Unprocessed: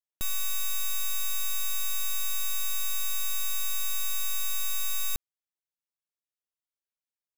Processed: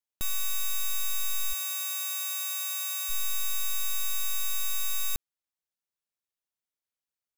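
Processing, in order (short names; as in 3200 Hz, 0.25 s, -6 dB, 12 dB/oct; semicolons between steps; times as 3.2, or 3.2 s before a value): 1.52–3.09 HPF 170 Hz -> 500 Hz 24 dB/oct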